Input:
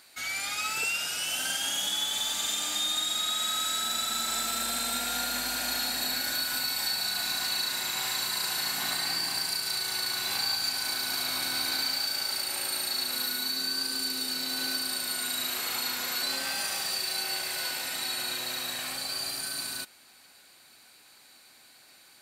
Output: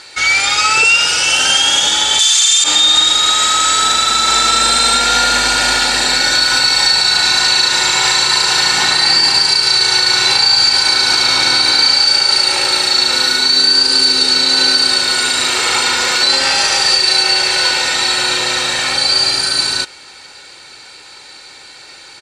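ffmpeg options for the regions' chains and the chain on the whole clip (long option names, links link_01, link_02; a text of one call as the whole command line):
ffmpeg -i in.wav -filter_complex "[0:a]asettb=1/sr,asplit=3[link_01][link_02][link_03];[link_01]atrim=end=2.194[link_04];[link_02]atrim=start=2.19:end=2.64,asetpts=PTS-STARTPTS,afade=type=in:duration=0.004:curve=qsin,afade=type=out:start_time=0.446:duration=0.004:curve=qsin,highpass=1400,equalizer=frequency=9600:width_type=o:width=2.4:gain=11,acontrast=48[link_05];[link_03]atrim=start=2.636[link_06];[link_04][link_05]acrossfade=duration=0.004:curve1=hsin:curve2=qsin[link_07];[link_07][link_06]acrossfade=duration=0.004:curve1=qsin:curve2=hsin,lowpass=frequency=7500:width=0.5412,lowpass=frequency=7500:width=1.3066,aecho=1:1:2.2:0.53,alimiter=level_in=20dB:limit=-1dB:release=50:level=0:latency=1,volume=-1dB" out.wav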